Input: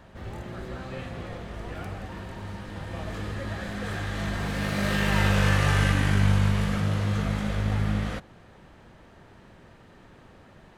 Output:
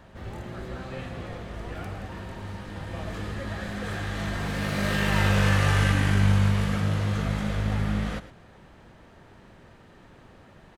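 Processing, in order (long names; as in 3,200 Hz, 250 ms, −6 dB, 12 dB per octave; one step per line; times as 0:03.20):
single-tap delay 111 ms −14.5 dB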